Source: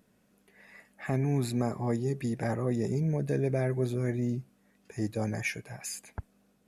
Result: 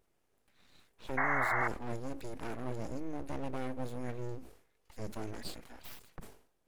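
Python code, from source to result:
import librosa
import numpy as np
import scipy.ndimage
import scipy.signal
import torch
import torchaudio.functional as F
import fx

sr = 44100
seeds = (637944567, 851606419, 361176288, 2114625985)

y = np.abs(x)
y = fx.spec_paint(y, sr, seeds[0], shape='noise', start_s=1.17, length_s=0.51, low_hz=600.0, high_hz=2200.0, level_db=-24.0)
y = fx.sustainer(y, sr, db_per_s=110.0)
y = F.gain(torch.from_numpy(y), -7.5).numpy()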